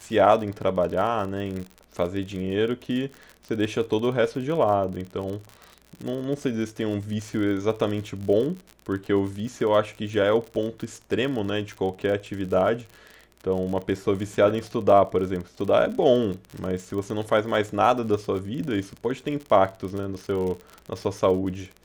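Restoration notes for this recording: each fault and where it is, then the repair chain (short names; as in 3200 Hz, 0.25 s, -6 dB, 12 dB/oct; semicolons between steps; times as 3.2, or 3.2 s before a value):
crackle 51/s -31 dBFS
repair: de-click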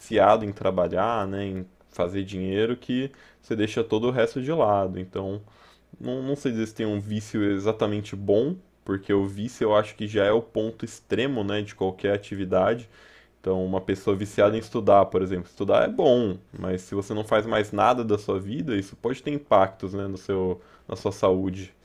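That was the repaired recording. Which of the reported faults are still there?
none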